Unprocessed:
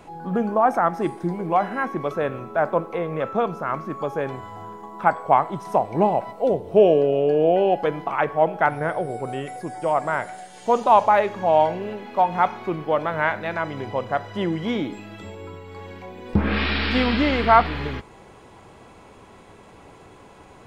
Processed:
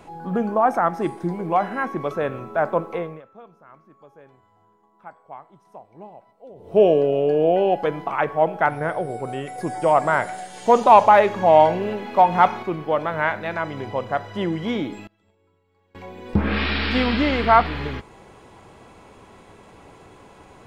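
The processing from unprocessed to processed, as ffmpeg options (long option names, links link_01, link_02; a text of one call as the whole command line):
ffmpeg -i in.wav -filter_complex "[0:a]asettb=1/sr,asplit=3[link_01][link_02][link_03];[link_01]atrim=end=9.584[link_04];[link_02]atrim=start=9.58:end=12.63,asetpts=PTS-STARTPTS,afade=type=in:duration=0.004:curve=qsin,afade=type=out:start_time=3.046:duration=0.004:curve=qsin,acontrast=20[link_05];[link_03]atrim=start=12.626[link_06];[link_04][link_05]acrossfade=duration=0.004:curve1=hsin:curve2=qsin[link_07];[link_07][link_06]acrossfade=duration=0.004:curve1=qsin:curve2=hsin,asettb=1/sr,asplit=3[link_08][link_09][link_10];[link_08]atrim=end=15.074[link_11];[link_09]atrim=start=15.07:end=15.95,asetpts=PTS-STARTPTS,afade=type=in:duration=0.004:curve=qsin,afade=type=out:start_time=0.876:duration=0.004:curve=qsin,agate=range=-27dB:threshold=-33dB:ratio=16:release=100:detection=peak[link_12];[link_10]atrim=start=15.946[link_13];[link_11][link_12]acrossfade=duration=0.004:curve1=hsin:curve2=qsin[link_14];[link_14][link_13]acrossfade=duration=0.004:curve1=qsin:curve2=hsin,asplit=3[link_15][link_16][link_17];[link_15]atrim=end=3.22,asetpts=PTS-STARTPTS,afade=type=out:start_time=2.96:duration=0.26:silence=0.0749894[link_18];[link_16]atrim=start=3.22:end=6.55,asetpts=PTS-STARTPTS,volume=-22.5dB[link_19];[link_17]atrim=start=6.55,asetpts=PTS-STARTPTS,afade=type=in:duration=0.26:silence=0.0749894[link_20];[link_18][link_19][link_20]concat=n=3:v=0:a=1" out.wav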